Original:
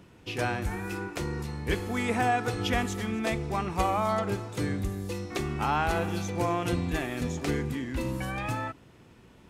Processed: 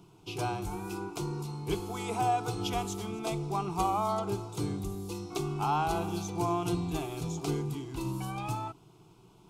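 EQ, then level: fixed phaser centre 360 Hz, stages 8; 0.0 dB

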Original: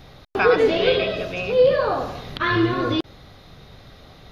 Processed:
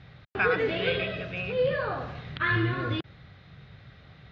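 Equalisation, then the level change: HPF 81 Hz; LPF 2200 Hz 12 dB/oct; band shelf 510 Hz -10.5 dB 2.7 oct; 0.0 dB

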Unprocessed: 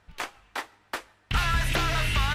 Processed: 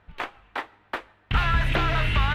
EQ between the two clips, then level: high shelf 4200 Hz -10.5 dB; band shelf 7800 Hz -9 dB; +3.5 dB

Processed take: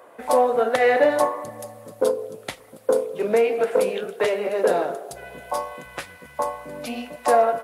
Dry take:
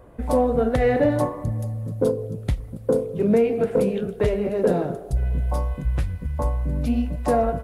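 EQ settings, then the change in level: HPF 650 Hz 12 dB/oct; +7.5 dB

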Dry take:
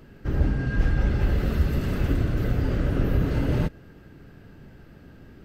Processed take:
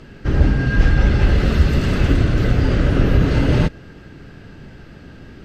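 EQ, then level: air absorption 82 m; high shelf 2500 Hz +10 dB; +8.0 dB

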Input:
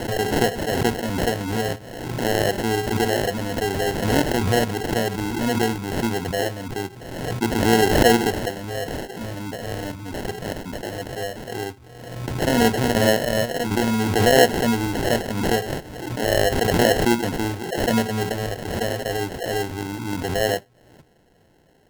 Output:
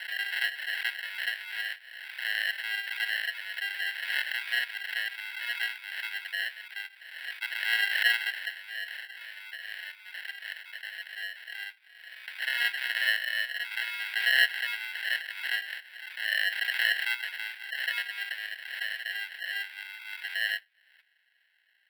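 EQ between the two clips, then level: ladder high-pass 1400 Hz, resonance 60%; bell 2100 Hz +8 dB 2.7 oct; fixed phaser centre 2900 Hz, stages 4; 0.0 dB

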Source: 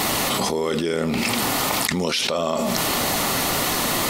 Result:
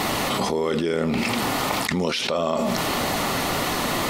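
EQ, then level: high shelf 5000 Hz -9.5 dB; 0.0 dB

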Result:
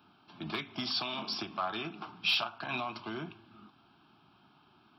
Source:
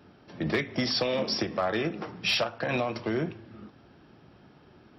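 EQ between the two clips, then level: HPF 480 Hz 6 dB/oct; fixed phaser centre 1900 Hz, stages 6; 0.0 dB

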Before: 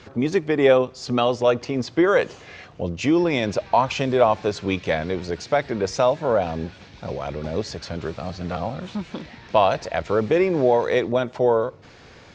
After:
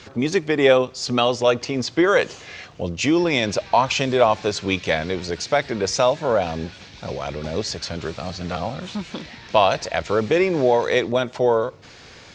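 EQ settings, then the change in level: high shelf 2400 Hz +9.5 dB; 0.0 dB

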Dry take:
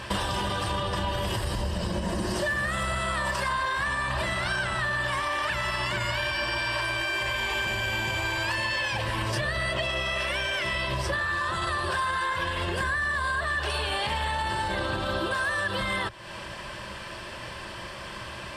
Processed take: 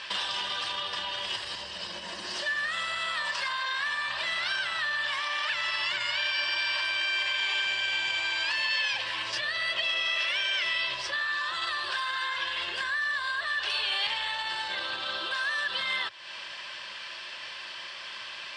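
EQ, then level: band-pass 3900 Hz, Q 0.95; air absorption 110 m; high shelf 5100 Hz +6.5 dB; +5.0 dB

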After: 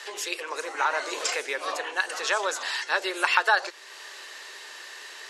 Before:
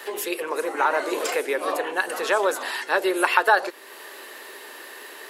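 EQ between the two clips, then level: HPF 1300 Hz 6 dB/oct; synth low-pass 6300 Hz, resonance Q 2; 0.0 dB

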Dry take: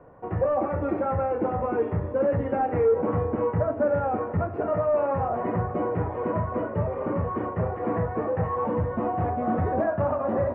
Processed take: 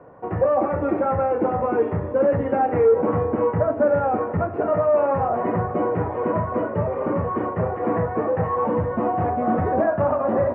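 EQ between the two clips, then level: HPF 140 Hz 6 dB/oct; air absorption 110 m; +5.5 dB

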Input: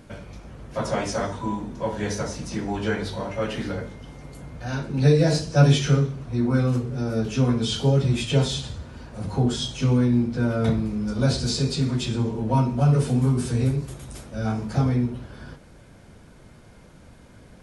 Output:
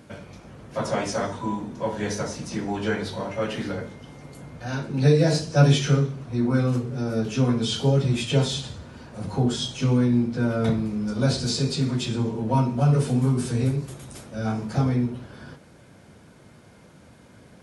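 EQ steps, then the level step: HPF 98 Hz; 0.0 dB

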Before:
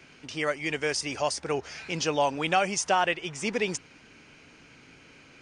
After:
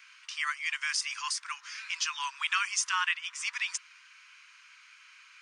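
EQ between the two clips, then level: steep high-pass 1000 Hz 96 dB/oct; 0.0 dB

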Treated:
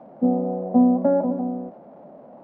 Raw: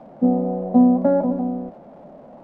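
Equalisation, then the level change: HPF 210 Hz 6 dB/oct; LPF 1300 Hz 6 dB/oct; 0.0 dB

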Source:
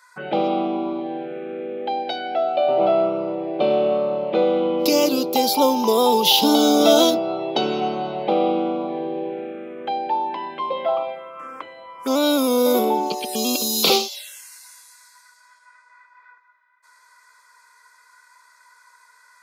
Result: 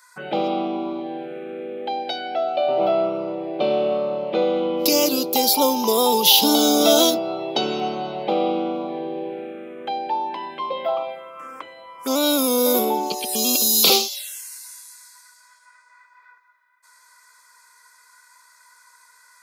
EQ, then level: high shelf 5000 Hz +10.5 dB; -2.0 dB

